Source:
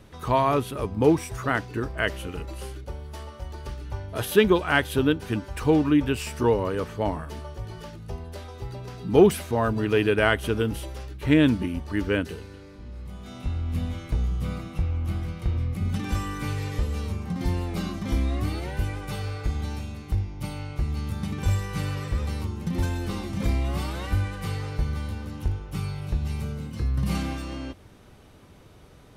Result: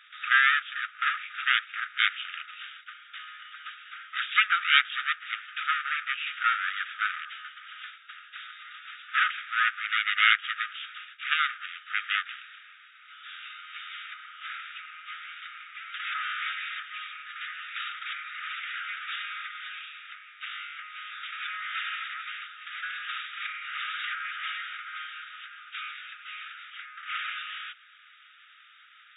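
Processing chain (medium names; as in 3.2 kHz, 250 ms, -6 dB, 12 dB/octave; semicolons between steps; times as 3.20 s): low-pass that closes with the level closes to 2 kHz, closed at -20 dBFS; full-wave rectifier; brick-wall FIR band-pass 1.2–3.8 kHz; trim +9 dB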